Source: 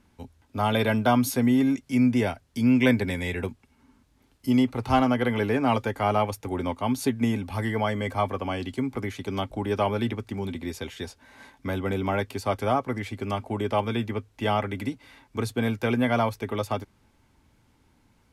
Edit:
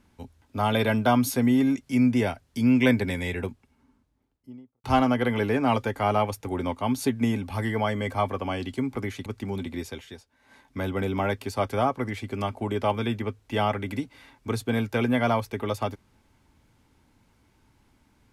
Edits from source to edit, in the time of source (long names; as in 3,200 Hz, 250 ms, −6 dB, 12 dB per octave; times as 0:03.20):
0:03.18–0:04.84: fade out and dull
0:09.26–0:10.15: remove
0:10.66–0:11.75: duck −13 dB, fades 0.47 s